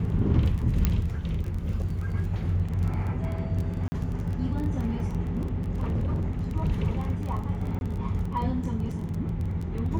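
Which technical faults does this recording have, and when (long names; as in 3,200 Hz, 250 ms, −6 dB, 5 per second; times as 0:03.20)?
surface crackle 18 per second −32 dBFS
0:00.85: click −10 dBFS
0:03.88–0:03.92: drop-out 40 ms
0:05.37–0:06.44: clipping −23.5 dBFS
0:07.79–0:07.81: drop-out 21 ms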